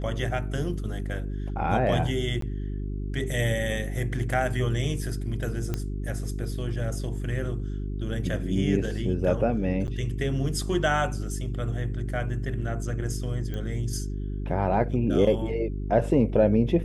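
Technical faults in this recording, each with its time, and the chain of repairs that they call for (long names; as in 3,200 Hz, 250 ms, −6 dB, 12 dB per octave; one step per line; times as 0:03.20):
mains hum 50 Hz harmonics 8 −31 dBFS
0:02.41–0:02.42: drop-out 13 ms
0:05.74: click −15 dBFS
0:09.87–0:09.88: drop-out 9.4 ms
0:13.54: click −22 dBFS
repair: click removal
hum removal 50 Hz, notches 8
repair the gap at 0:02.41, 13 ms
repair the gap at 0:09.87, 9.4 ms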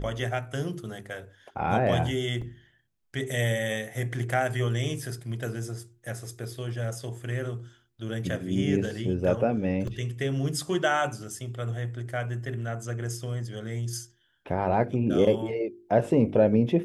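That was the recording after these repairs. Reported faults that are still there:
0:13.54: click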